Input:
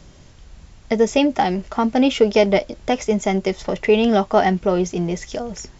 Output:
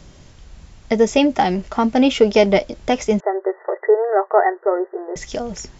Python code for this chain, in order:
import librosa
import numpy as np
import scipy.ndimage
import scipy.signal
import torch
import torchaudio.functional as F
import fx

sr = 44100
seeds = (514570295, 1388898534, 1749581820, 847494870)

y = fx.brickwall_bandpass(x, sr, low_hz=350.0, high_hz=2000.0, at=(3.2, 5.16))
y = y * librosa.db_to_amplitude(1.5)